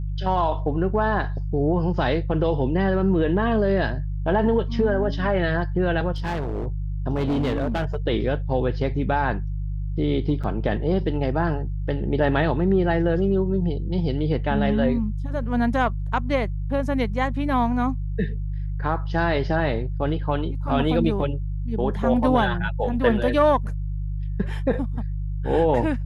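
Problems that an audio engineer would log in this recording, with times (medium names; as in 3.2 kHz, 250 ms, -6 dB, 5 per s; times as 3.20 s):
hum 50 Hz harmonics 3 -27 dBFS
6.12–6.67 s: clipped -23 dBFS
7.15–7.96 s: clipped -19.5 dBFS
10.43–10.44 s: dropout 6 ms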